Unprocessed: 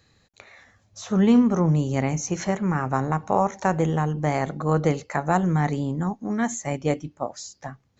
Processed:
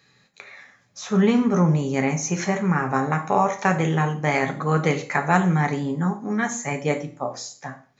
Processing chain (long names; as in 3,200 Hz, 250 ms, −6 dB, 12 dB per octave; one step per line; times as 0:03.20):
0:03.01–0:05.56: dynamic equaliser 2,900 Hz, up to +5 dB, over −43 dBFS, Q 1.1
convolution reverb RT60 0.40 s, pre-delay 3 ms, DRR 4.5 dB